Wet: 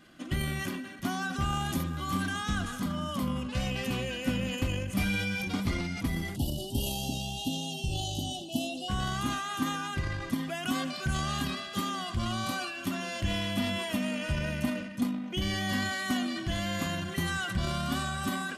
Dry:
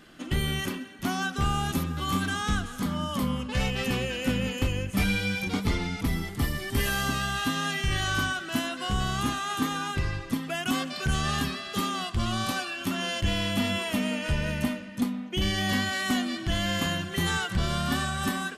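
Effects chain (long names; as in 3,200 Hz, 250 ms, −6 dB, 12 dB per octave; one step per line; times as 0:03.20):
time-frequency box erased 0:06.36–0:08.89, 950–2,600 Hz
transient designer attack +2 dB, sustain +8 dB
notch comb filter 440 Hz
level −4 dB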